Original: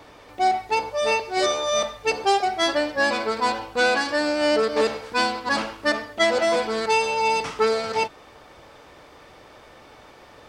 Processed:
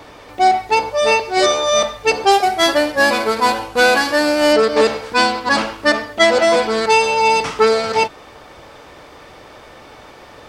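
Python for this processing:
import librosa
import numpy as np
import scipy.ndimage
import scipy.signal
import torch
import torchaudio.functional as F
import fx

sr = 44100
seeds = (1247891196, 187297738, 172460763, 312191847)

y = fx.cvsd(x, sr, bps=64000, at=(2.31, 4.53))
y = F.gain(torch.from_numpy(y), 7.5).numpy()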